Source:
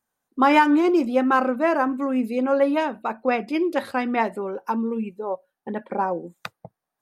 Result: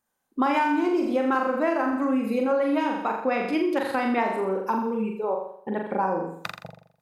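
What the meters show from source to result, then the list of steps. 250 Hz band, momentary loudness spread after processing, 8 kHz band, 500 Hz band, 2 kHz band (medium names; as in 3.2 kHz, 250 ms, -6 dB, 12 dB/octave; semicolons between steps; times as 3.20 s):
-2.5 dB, 9 LU, no reading, -2.0 dB, -3.0 dB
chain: on a send: flutter echo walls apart 7.2 m, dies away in 0.63 s; on the sum: compression 6:1, threshold -20 dBFS, peak gain reduction 10 dB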